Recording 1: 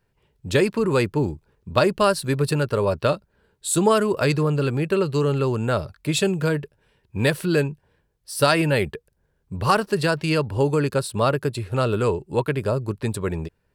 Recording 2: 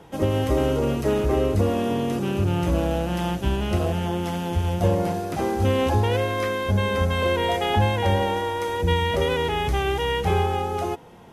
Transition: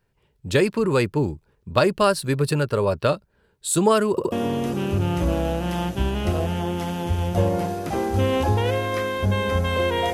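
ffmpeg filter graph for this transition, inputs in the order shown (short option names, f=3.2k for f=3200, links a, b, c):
-filter_complex "[0:a]apad=whole_dur=10.13,atrim=end=10.13,asplit=3[a][b][c];[a]atrim=end=4.182[d];[b]atrim=start=4.108:end=4.182[e];[c]atrim=start=4.108:end=4.182[f];[1:a]atrim=start=1.778:end=7.59[g];[d][e]acrossfade=d=0.004:c1=hsin:c2=hsin[h];[h][f]acrossfade=d=0.004:c1=hsin:c2=hsin[i];[i][g]acrossfade=d=0.004:c1=hsin:c2=hsin"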